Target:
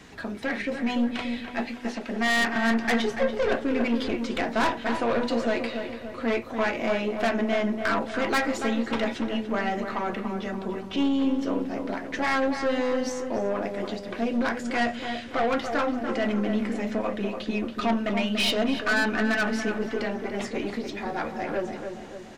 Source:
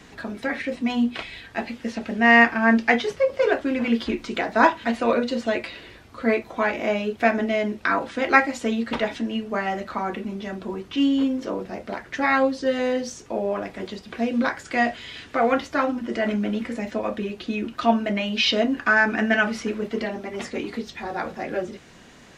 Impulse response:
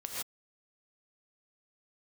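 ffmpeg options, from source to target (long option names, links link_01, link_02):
-filter_complex "[0:a]asettb=1/sr,asplit=3[link_01][link_02][link_03];[link_01]atrim=end=1.474[link_04];[link_02]atrim=start=1.47:end=2.56,asetpts=PTS-STARTPTS,afade=type=in:duration=0.004:curve=qsin,afade=type=out:start_time=1.086:duration=0.004:curve=qsin,highpass=frequency=200:width=0.5412,highpass=frequency=200:width=1.3066[link_05];[link_03]atrim=start=2.556[link_06];[link_04][link_05]acrossfade=duration=0.004:curve1=hsin:curve2=qsin[link_07];[link_07][link_06]acrossfade=duration=0.004:curve1=qsin:curve2=hsin,aeval=exprs='(tanh(10*val(0)+0.35)-tanh(0.35))/10':channel_layout=same,asplit=2[link_08][link_09];[link_09]adelay=288,lowpass=frequency=2000:poles=1,volume=-6.5dB,asplit=2[link_10][link_11];[link_11]adelay=288,lowpass=frequency=2000:poles=1,volume=0.53,asplit=2[link_12][link_13];[link_13]adelay=288,lowpass=frequency=2000:poles=1,volume=0.53,asplit=2[link_14][link_15];[link_15]adelay=288,lowpass=frequency=2000:poles=1,volume=0.53,asplit=2[link_16][link_17];[link_17]adelay=288,lowpass=frequency=2000:poles=1,volume=0.53,asplit=2[link_18][link_19];[link_19]adelay=288,lowpass=frequency=2000:poles=1,volume=0.53,asplit=2[link_20][link_21];[link_21]adelay=288,lowpass=frequency=2000:poles=1,volume=0.53[link_22];[link_10][link_12][link_14][link_16][link_18][link_20][link_22]amix=inputs=7:normalize=0[link_23];[link_08][link_23]amix=inputs=2:normalize=0"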